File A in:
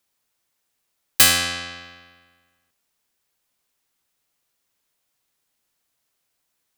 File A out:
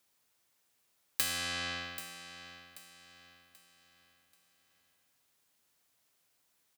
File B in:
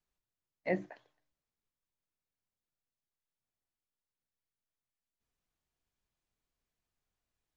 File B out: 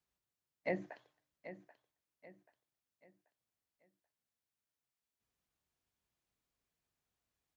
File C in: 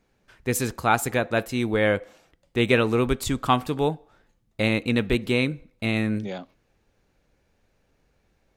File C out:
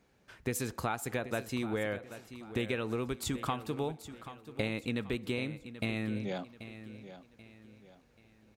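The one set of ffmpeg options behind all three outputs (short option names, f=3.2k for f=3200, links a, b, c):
-filter_complex "[0:a]highpass=54,acompressor=threshold=-31dB:ratio=8,asplit=2[a][b];[b]aecho=0:1:784|1568|2352|3136:0.224|0.0828|0.0306|0.0113[c];[a][c]amix=inputs=2:normalize=0"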